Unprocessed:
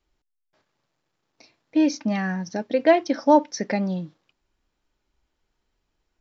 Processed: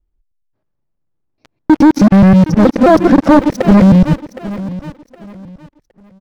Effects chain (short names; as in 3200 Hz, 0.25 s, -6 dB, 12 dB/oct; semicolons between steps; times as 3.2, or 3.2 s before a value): local time reversal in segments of 0.106 s; tilt -4.5 dB/oct; sample leveller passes 5; on a send: feedback echo 0.765 s, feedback 29%, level -16 dB; on the sum: slew limiter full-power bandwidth 640 Hz; gain -1.5 dB